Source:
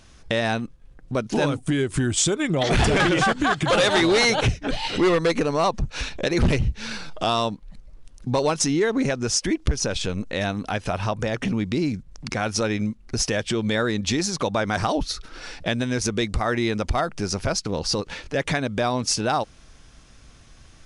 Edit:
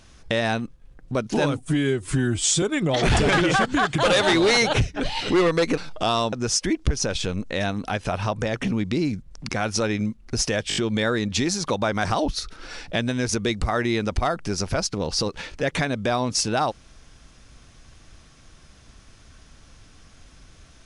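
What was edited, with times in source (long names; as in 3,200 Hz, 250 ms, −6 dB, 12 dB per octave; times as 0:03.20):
0:01.65–0:02.30: time-stretch 1.5×
0:05.45–0:06.98: remove
0:07.53–0:09.13: remove
0:13.49: stutter 0.02 s, 5 plays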